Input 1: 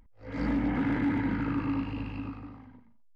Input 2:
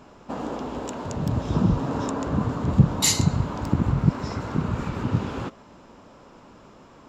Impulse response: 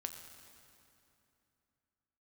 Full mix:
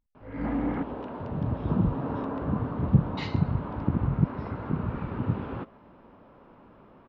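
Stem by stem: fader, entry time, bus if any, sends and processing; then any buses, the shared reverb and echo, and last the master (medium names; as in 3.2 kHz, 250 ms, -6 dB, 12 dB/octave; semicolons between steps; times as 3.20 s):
-1.0 dB, 0.00 s, muted 0.83–2.59 s, no send, gate with hold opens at -46 dBFS
-4.0 dB, 0.15 s, no send, none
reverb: none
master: Gaussian low-pass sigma 3.1 samples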